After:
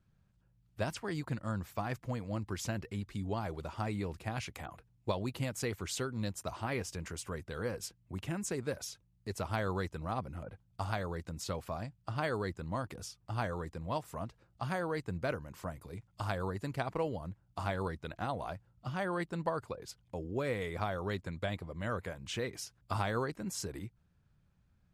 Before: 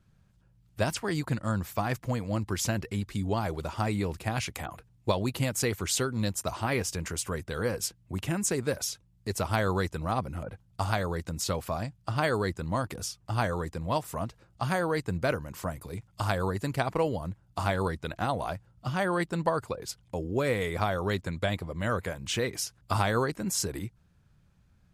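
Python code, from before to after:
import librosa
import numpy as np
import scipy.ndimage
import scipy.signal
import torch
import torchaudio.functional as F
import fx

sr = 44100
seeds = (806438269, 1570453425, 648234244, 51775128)

y = fx.high_shelf(x, sr, hz=6000.0, db=-6.5)
y = F.gain(torch.from_numpy(y), -7.0).numpy()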